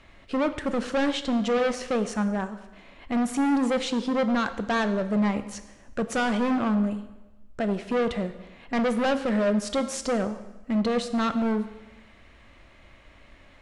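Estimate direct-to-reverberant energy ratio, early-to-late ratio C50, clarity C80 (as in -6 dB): 10.0 dB, 12.5 dB, 14.0 dB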